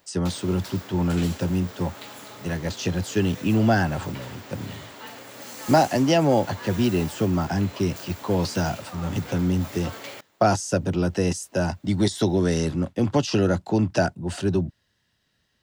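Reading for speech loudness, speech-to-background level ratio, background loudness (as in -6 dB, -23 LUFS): -24.0 LUFS, 15.5 dB, -39.5 LUFS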